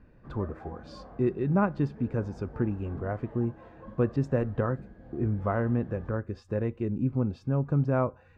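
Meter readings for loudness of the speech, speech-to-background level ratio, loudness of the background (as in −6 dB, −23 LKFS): −30.0 LKFS, 18.0 dB, −48.0 LKFS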